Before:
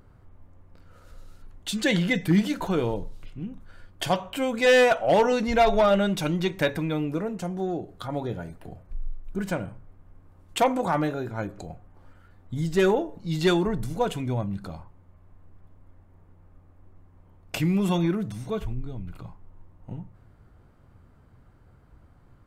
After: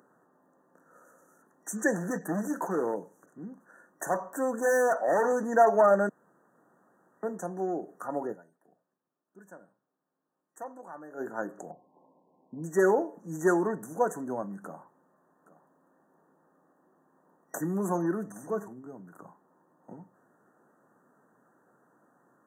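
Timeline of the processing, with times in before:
1.94–5.49 hard clip -21 dBFS
6.09–7.23 room tone
8.31–11.21 dip -18.5 dB, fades 0.41 s exponential
11.71–12.64 brick-wall FIR low-pass 1100 Hz
14.64–18.68 echo 0.819 s -17.5 dB
whole clip: FFT band-reject 1900–5800 Hz; Bessel high-pass 310 Hz, order 8

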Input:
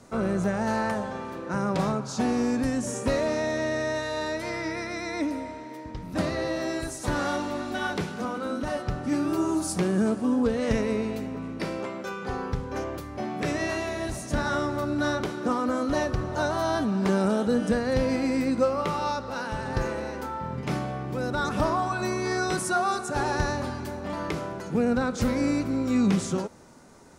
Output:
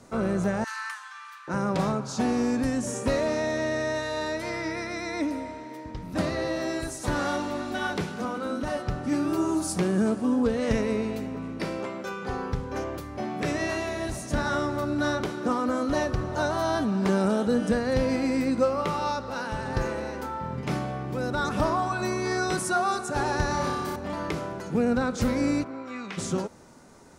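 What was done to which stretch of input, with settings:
0.64–1.48 steep high-pass 1100 Hz 48 dB/oct
23.48–23.96 flutter echo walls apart 5.1 m, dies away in 0.91 s
25.63–26.17 band-pass 870 Hz -> 2300 Hz, Q 0.98

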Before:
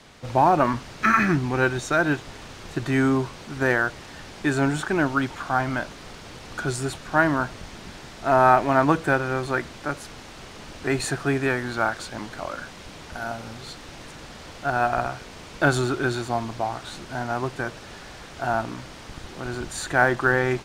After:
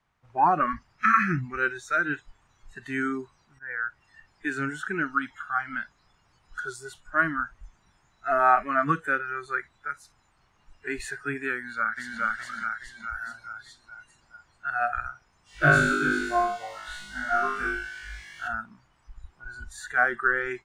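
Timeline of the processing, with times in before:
3.59–4.03 fade in, from -15.5 dB
11.55–12.21 echo throw 0.42 s, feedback 65%, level 0 dB
15.44–18.48 flutter echo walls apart 3.4 m, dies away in 1.1 s
whole clip: graphic EQ 250/500/1000/4000 Hz -7/-10/+4/-6 dB; spectral noise reduction 21 dB; high shelf 3900 Hz -11 dB

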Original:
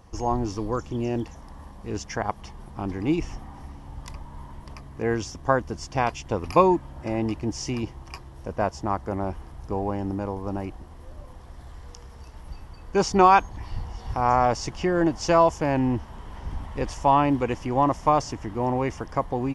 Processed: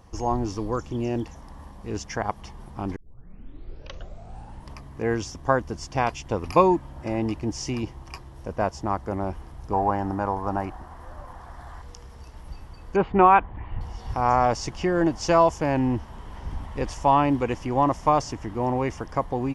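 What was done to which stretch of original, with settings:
2.96 tape start 1.73 s
9.73–11.82 band shelf 1100 Hz +9.5 dB
12.96–13.81 inverse Chebyshev low-pass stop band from 5300 Hz

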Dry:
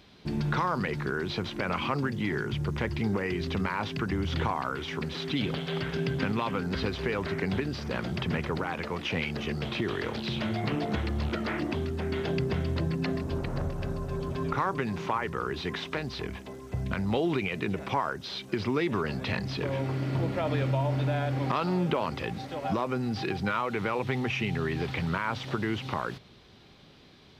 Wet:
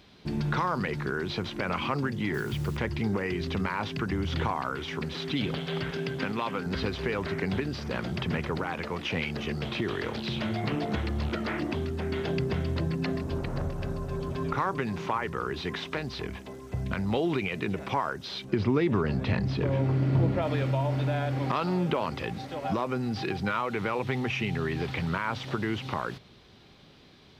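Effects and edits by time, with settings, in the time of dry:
2.34–2.77 requantised 8-bit, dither none
5.91–6.66 HPF 220 Hz 6 dB/oct
18.44–20.42 tilt -2 dB/oct

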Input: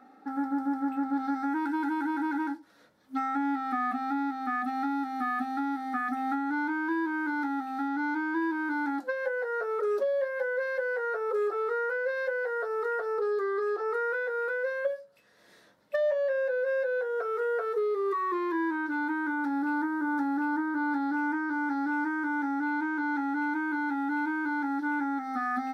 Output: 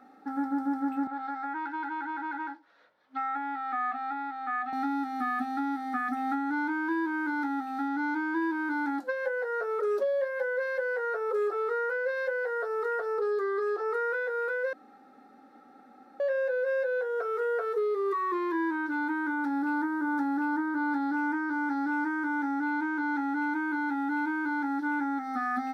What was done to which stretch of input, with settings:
1.07–4.73 three-band isolator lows -17 dB, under 460 Hz, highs -24 dB, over 4100 Hz
14.73–16.2 room tone

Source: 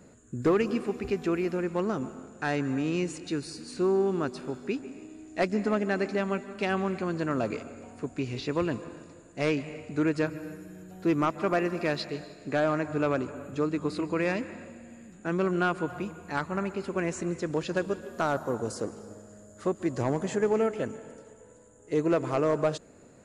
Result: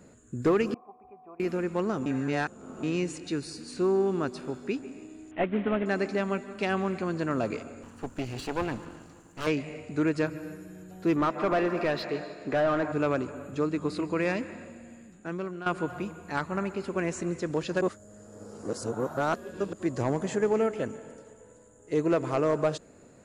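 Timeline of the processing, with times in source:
0.74–1.4 vocal tract filter a
2.06–2.83 reverse
5.31–5.86 CVSD 16 kbps
7.83–9.47 minimum comb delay 0.67 ms
11.16–12.92 overdrive pedal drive 17 dB, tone 1200 Hz, clips at -17 dBFS
14.88–15.66 fade out, to -15 dB
17.81–19.73 reverse

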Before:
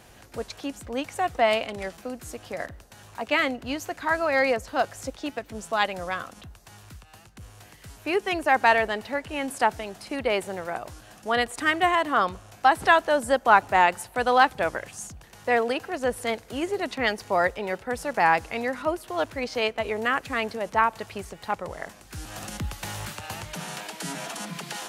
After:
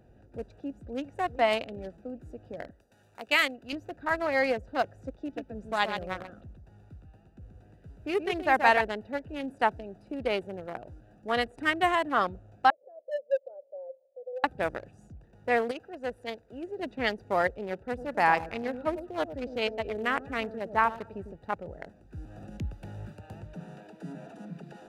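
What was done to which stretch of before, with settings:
0.46–1.18 echo throw 0.39 s, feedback 50%, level -15 dB
2.7–3.73 tilt +3.5 dB/oct
5.2–8.81 echo 0.129 s -5.5 dB
12.7–14.44 Butterworth band-pass 550 Hz, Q 7.3
15.71–16.79 low shelf 460 Hz -9 dB
17.87–21.36 echo with dull and thin repeats by turns 0.101 s, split 1100 Hz, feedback 51%, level -8 dB
whole clip: Wiener smoothing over 41 samples; gain -2.5 dB

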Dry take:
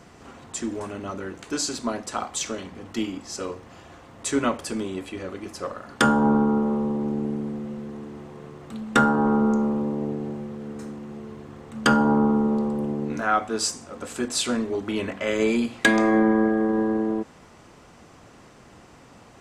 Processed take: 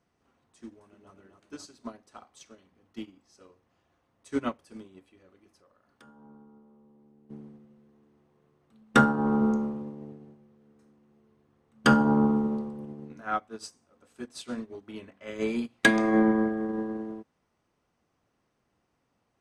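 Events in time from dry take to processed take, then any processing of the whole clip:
0.66–1.13 echo throw 0.26 s, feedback 55%, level -4 dB
5.57–7.3 compressor 2:1, threshold -38 dBFS
whole clip: notch 7300 Hz, Q 8; dynamic EQ 150 Hz, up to +4 dB, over -35 dBFS, Q 1; upward expander 2.5:1, over -31 dBFS

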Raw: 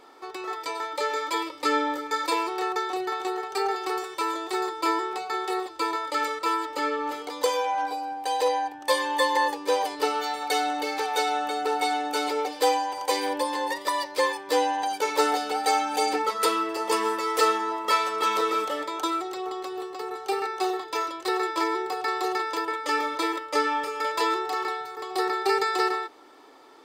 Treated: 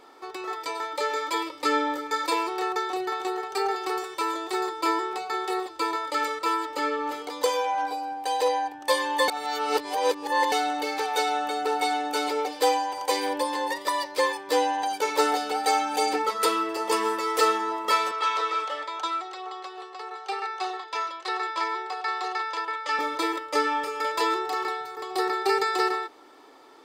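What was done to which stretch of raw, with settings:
9.28–10.52 reverse
18.11–22.99 BPF 670–5400 Hz

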